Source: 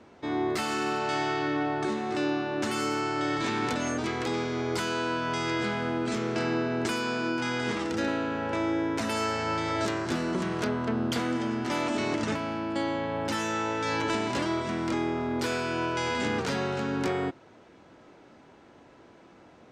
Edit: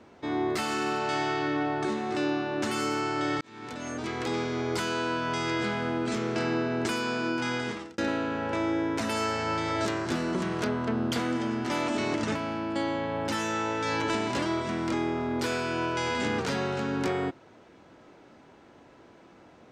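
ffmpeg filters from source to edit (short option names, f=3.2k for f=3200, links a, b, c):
-filter_complex "[0:a]asplit=3[a][b][c];[a]atrim=end=3.41,asetpts=PTS-STARTPTS,afade=t=out:st=3.406:d=0.004:c=hsin[d];[b]atrim=start=3.41:end=7.98,asetpts=PTS-STARTPTS,afade=t=in:d=0.93,afade=t=out:st=4.14:d=0.43[e];[c]atrim=start=7.98,asetpts=PTS-STARTPTS,afade=t=in:d=0.004:c=hsin[f];[d][e][f]concat=n=3:v=0:a=1"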